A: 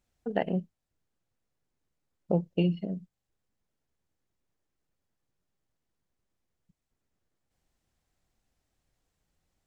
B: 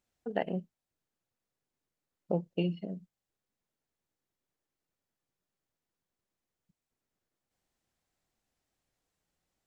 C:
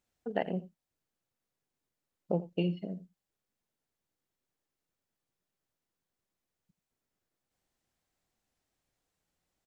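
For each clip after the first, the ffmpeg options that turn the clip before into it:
-af "lowshelf=f=120:g=-10.5,volume=0.75"
-af "aecho=1:1:85:0.133"

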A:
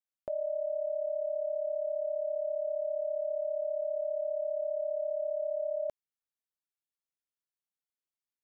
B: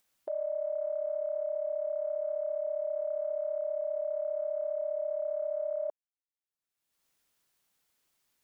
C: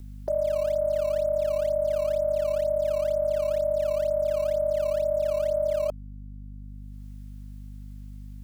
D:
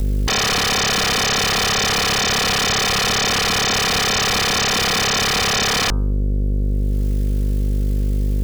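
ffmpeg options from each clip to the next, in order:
-af "afwtdn=0.00708,acompressor=mode=upward:threshold=0.00355:ratio=2.5"
-filter_complex "[0:a]aeval=exprs='val(0)+0.00447*(sin(2*PI*50*n/s)+sin(2*PI*2*50*n/s)/2+sin(2*PI*3*50*n/s)/3+sin(2*PI*4*50*n/s)/4+sin(2*PI*5*50*n/s)/5)':c=same,acrossover=split=600|630|700[s0][s1][s2][s3];[s2]acrusher=samples=15:mix=1:aa=0.000001:lfo=1:lforange=24:lforate=2.1[s4];[s0][s1][s4][s3]amix=inputs=4:normalize=0,volume=2.51"
-af "aeval=exprs='0.133*sin(PI/2*8.91*val(0)/0.133)':c=same,bandreject=f=86.39:t=h:w=4,bandreject=f=172.78:t=h:w=4,bandreject=f=259.17:t=h:w=4,bandreject=f=345.56:t=h:w=4,bandreject=f=431.95:t=h:w=4,bandreject=f=518.34:t=h:w=4,bandreject=f=604.73:t=h:w=4,bandreject=f=691.12:t=h:w=4,bandreject=f=777.51:t=h:w=4,bandreject=f=863.9:t=h:w=4,bandreject=f=950.29:t=h:w=4,bandreject=f=1036.68:t=h:w=4,bandreject=f=1123.07:t=h:w=4,bandreject=f=1209.46:t=h:w=4,bandreject=f=1295.85:t=h:w=4,bandreject=f=1382.24:t=h:w=4,bandreject=f=1468.63:t=h:w=4,bandreject=f=1555.02:t=h:w=4,volume=1.33"

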